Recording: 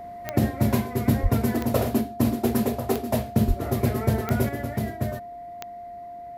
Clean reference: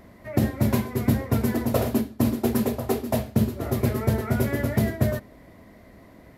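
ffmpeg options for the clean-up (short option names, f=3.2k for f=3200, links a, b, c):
-filter_complex "[0:a]adeclick=t=4,bandreject=f=700:w=30,asplit=3[a][b][c];[a]afade=t=out:st=1.22:d=0.02[d];[b]highpass=f=140:w=0.5412,highpass=f=140:w=1.3066,afade=t=in:st=1.22:d=0.02,afade=t=out:st=1.34:d=0.02[e];[c]afade=t=in:st=1.34:d=0.02[f];[d][e][f]amix=inputs=3:normalize=0,asplit=3[g][h][i];[g]afade=t=out:st=3.47:d=0.02[j];[h]highpass=f=140:w=0.5412,highpass=f=140:w=1.3066,afade=t=in:st=3.47:d=0.02,afade=t=out:st=3.59:d=0.02[k];[i]afade=t=in:st=3.59:d=0.02[l];[j][k][l]amix=inputs=3:normalize=0,asetnsamples=n=441:p=0,asendcmd='4.49 volume volume 5.5dB',volume=0dB"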